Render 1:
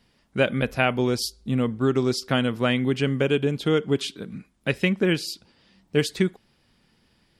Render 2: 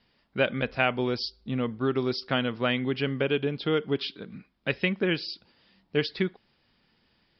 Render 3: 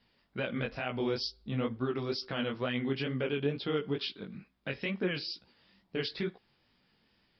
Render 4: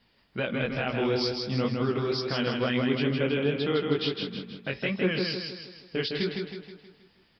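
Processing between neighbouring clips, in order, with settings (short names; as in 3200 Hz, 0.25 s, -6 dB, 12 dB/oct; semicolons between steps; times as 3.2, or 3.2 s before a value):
steep low-pass 5200 Hz 96 dB/oct; low shelf 340 Hz -5.5 dB; gain -2 dB
limiter -19.5 dBFS, peak gain reduction 11.5 dB; chorus 2.2 Hz, delay 15.5 ms, depth 6.8 ms
feedback echo 0.159 s, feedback 47%, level -4 dB; gain +4.5 dB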